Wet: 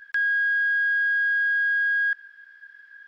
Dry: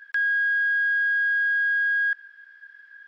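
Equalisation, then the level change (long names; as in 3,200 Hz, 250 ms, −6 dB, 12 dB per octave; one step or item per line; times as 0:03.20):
bass and treble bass +11 dB, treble +2 dB
0.0 dB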